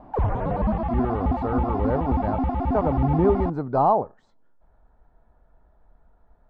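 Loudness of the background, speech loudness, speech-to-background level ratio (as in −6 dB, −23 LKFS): −26.0 LKFS, −26.0 LKFS, 0.0 dB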